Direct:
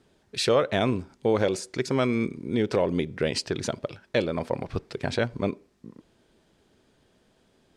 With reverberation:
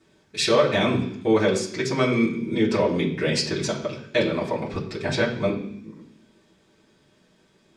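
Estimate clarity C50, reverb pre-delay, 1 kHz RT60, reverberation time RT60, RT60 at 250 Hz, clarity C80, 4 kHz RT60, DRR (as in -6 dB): 8.0 dB, 3 ms, 0.65 s, 0.65 s, 0.95 s, 11.0 dB, 0.85 s, -7.0 dB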